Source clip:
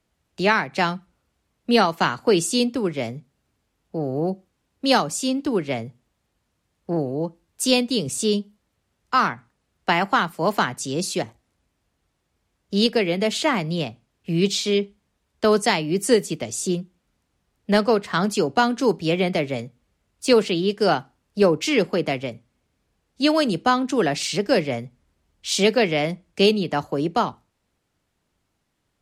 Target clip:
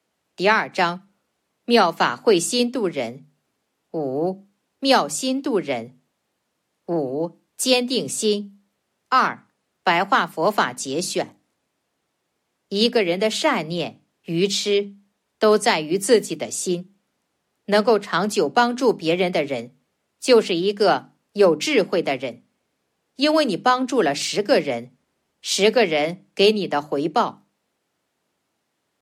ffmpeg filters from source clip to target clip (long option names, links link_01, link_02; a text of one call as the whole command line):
ffmpeg -i in.wav -filter_complex "[0:a]acrossover=split=300|730|5400[link_01][link_02][link_03][link_04];[link_02]crystalizer=i=9.5:c=0[link_05];[link_01][link_05][link_03][link_04]amix=inputs=4:normalize=0,highpass=200,atempo=1,bandreject=frequency=50:width_type=h:width=6,bandreject=frequency=100:width_type=h:width=6,bandreject=frequency=150:width_type=h:width=6,bandreject=frequency=200:width_type=h:width=6,bandreject=frequency=250:width_type=h:width=6,bandreject=frequency=300:width_type=h:width=6,volume=1.5dB" -ar 44100 -c:a aac -b:a 96k out.aac